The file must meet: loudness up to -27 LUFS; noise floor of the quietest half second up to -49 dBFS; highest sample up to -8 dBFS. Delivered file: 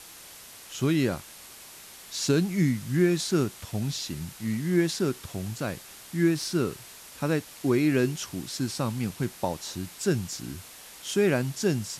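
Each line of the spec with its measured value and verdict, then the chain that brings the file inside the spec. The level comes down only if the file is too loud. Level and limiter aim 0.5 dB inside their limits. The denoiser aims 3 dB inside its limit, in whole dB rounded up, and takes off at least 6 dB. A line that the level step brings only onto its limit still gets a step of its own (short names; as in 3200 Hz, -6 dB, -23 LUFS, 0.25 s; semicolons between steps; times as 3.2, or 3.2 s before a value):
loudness -28.0 LUFS: OK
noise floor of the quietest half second -47 dBFS: fail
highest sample -11.5 dBFS: OK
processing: denoiser 6 dB, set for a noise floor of -47 dBFS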